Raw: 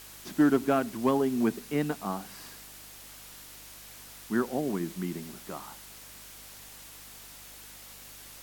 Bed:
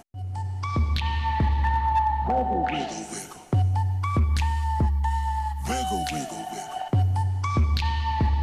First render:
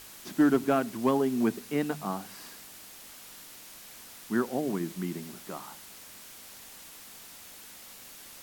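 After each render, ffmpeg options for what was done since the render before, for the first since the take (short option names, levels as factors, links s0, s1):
-af "bandreject=f=50:t=h:w=4,bandreject=f=100:t=h:w=4,bandreject=f=150:t=h:w=4"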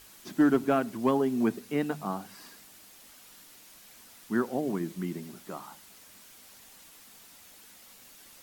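-af "afftdn=nr=6:nf=-49"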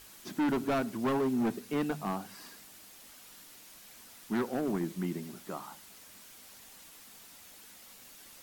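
-af "asoftclip=type=hard:threshold=0.0501"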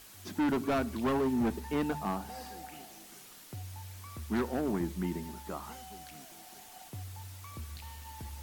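-filter_complex "[1:a]volume=0.0794[s0];[0:a][s0]amix=inputs=2:normalize=0"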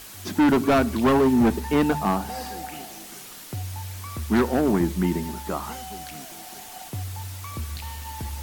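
-af "volume=3.55"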